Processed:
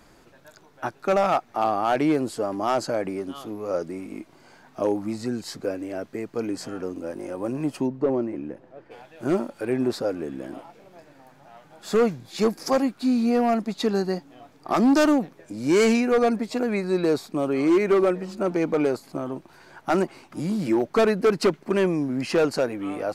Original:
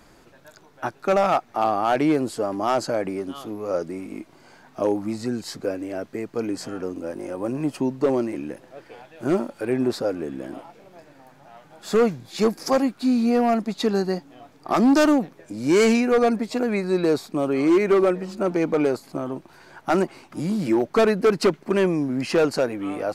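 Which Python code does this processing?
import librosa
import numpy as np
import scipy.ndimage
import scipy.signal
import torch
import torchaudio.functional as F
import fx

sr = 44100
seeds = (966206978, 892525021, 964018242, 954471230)

y = fx.lowpass(x, sr, hz=1000.0, slope=6, at=(7.86, 8.9), fade=0.02)
y = y * 10.0 ** (-1.5 / 20.0)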